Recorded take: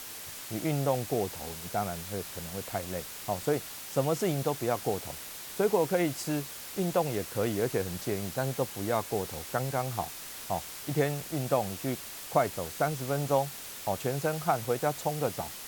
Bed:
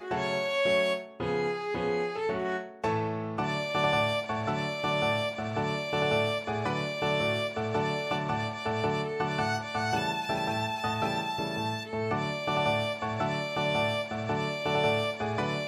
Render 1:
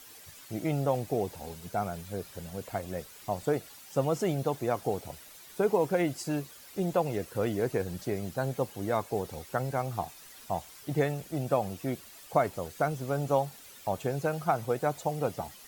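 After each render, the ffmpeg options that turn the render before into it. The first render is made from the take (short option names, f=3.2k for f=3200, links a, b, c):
-af "afftdn=nr=11:nf=-43"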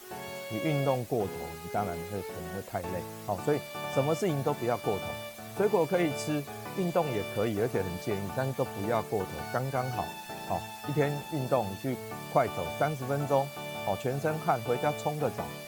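-filter_complex "[1:a]volume=-10.5dB[a];[0:a][a]amix=inputs=2:normalize=0"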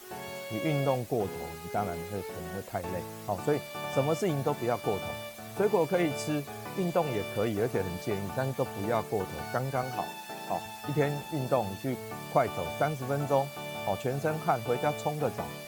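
-filter_complex "[0:a]asettb=1/sr,asplit=3[a][b][c];[a]atrim=end=9.834[d];[b]atrim=start=9.83:end=10.66,asetpts=PTS-STARTPTS,afade=t=in:d=0.004:c=qsin,afade=t=out:st=0.826:d=0.004:c=qsin,highpass=170[e];[c]atrim=start=10.656[f];[d][e]acrossfade=d=0.004:c1=hsin:c2=qsin[g];[g][f]acrossfade=d=0.004:c1=qsin:c2=hsin"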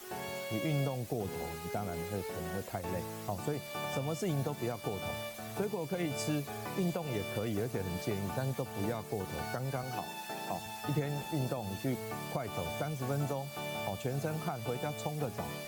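-filter_complex "[0:a]alimiter=limit=-19.5dB:level=0:latency=1:release=204,acrossover=split=240|3000[a][b][c];[b]acompressor=threshold=-35dB:ratio=6[d];[a][d][c]amix=inputs=3:normalize=0"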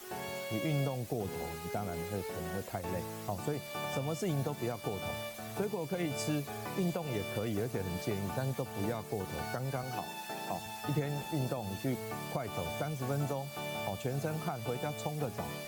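-af anull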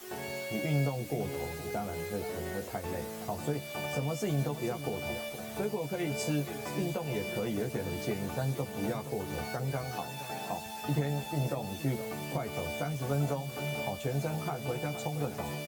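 -filter_complex "[0:a]asplit=2[a][b];[b]adelay=14,volume=-4dB[c];[a][c]amix=inputs=2:normalize=0,asplit=2[d][e];[e]aecho=0:1:470:0.266[f];[d][f]amix=inputs=2:normalize=0"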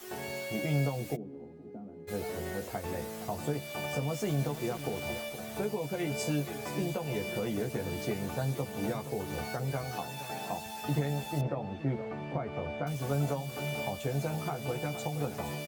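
-filter_complex "[0:a]asplit=3[a][b][c];[a]afade=t=out:st=1.15:d=0.02[d];[b]bandpass=f=260:t=q:w=3,afade=t=in:st=1.15:d=0.02,afade=t=out:st=2.07:d=0.02[e];[c]afade=t=in:st=2.07:d=0.02[f];[d][e][f]amix=inputs=3:normalize=0,asettb=1/sr,asplit=3[g][h][i];[g]atrim=end=4.134[j];[h]atrim=start=4.13:end=5.22,asetpts=PTS-STARTPTS,afade=t=in:d=0.004:c=qsin,afade=t=out:st=1.086:d=0.004:c=qsin,aeval=exprs='val(0)*gte(abs(val(0)),0.0075)':c=same[k];[i]atrim=start=5.216[l];[j][k]acrossfade=d=0.004:c1=hsin:c2=qsin[m];[m][l]acrossfade=d=0.004:c1=qsin:c2=hsin,asettb=1/sr,asplit=3[n][o][p];[n]atrim=end=11.414[q];[o]atrim=start=11.41:end=12.87,asetpts=PTS-STARTPTS,afade=t=in:d=0.004:c=qsin,afade=t=out:st=1.456:d=0.004:c=qsin,lowpass=2k[r];[p]atrim=start=12.866[s];[q][r]acrossfade=d=0.004:c1=hsin:c2=qsin[t];[t][s]acrossfade=d=0.004:c1=qsin:c2=hsin"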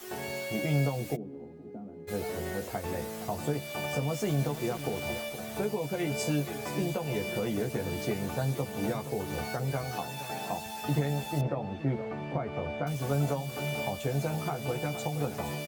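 -af "volume=2dB"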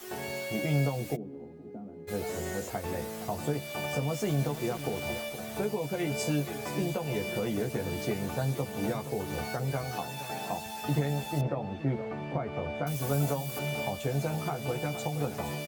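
-filter_complex "[0:a]asettb=1/sr,asplit=3[a][b][c];[a]atrim=end=2.274[d];[b]atrim=start=2.27:end=2.7,asetpts=PTS-STARTPTS,afade=t=in:d=0.004:c=qsin,afade=t=out:st=0.426:d=0.004:c=qsin,equalizer=f=7k:w=2.8:g=9[e];[c]atrim=start=2.696[f];[d][e]acrossfade=d=0.004:c1=hsin:c2=qsin[g];[g][f]acrossfade=d=0.004:c1=qsin:c2=hsin,asettb=1/sr,asplit=3[h][i][j];[h]atrim=end=12.754[k];[i]atrim=start=12.75:end=13.59,asetpts=PTS-STARTPTS,afade=t=in:d=0.004:c=qsin,afade=t=out:st=0.836:d=0.004:c=qsin,highshelf=f=8.7k:g=10.5[l];[j]atrim=start=13.586[m];[k][l]acrossfade=d=0.004:c1=hsin:c2=qsin[n];[n][m]acrossfade=d=0.004:c1=qsin:c2=hsin"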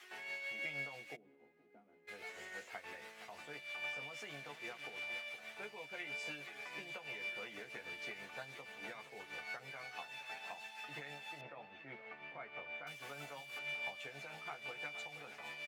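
-af "bandpass=f=2.2k:t=q:w=1.8:csg=0,tremolo=f=6.2:d=0.47"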